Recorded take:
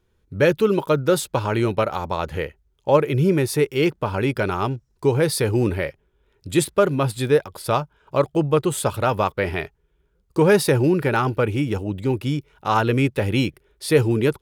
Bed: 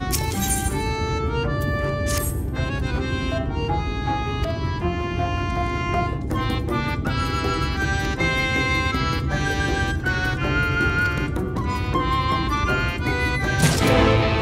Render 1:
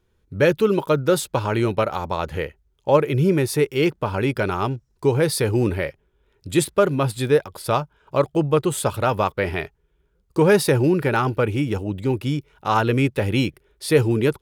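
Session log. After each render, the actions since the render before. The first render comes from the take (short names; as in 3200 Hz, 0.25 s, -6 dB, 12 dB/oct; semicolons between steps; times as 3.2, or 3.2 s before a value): nothing audible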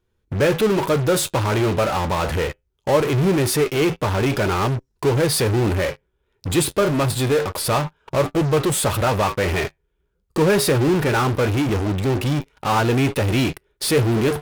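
flange 0.23 Hz, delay 8.4 ms, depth 2.8 ms, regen -71%; in parallel at -10 dB: fuzz box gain 45 dB, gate -52 dBFS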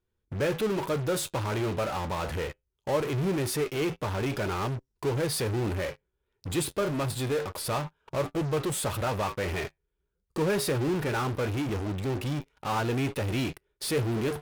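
gain -10 dB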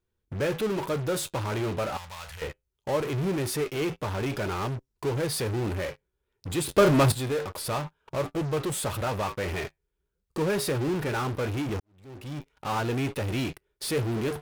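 1.97–2.42 passive tone stack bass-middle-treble 10-0-10; 6.69–7.12 gain +9.5 dB; 11.8–12.52 fade in quadratic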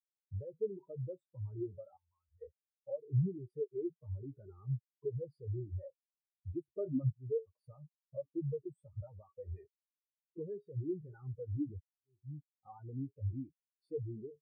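compressor 5:1, threshold -33 dBFS, peak gain reduction 16 dB; spectral expander 4:1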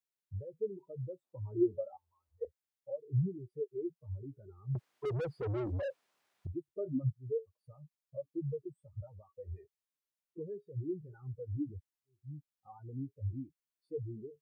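1.23–2.45 band shelf 500 Hz +11.5 dB 2.6 oct; 4.75–6.47 overdrive pedal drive 36 dB, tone 1100 Hz, clips at -28 dBFS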